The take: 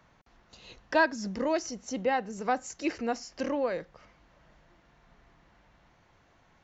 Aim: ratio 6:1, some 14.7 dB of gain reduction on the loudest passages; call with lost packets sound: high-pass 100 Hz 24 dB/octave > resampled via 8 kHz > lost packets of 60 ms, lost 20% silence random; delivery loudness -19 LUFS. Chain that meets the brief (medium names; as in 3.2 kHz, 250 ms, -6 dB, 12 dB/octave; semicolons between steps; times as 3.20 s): compression 6:1, threshold -35 dBFS; high-pass 100 Hz 24 dB/octave; resampled via 8 kHz; lost packets of 60 ms, lost 20% silence random; trim +22.5 dB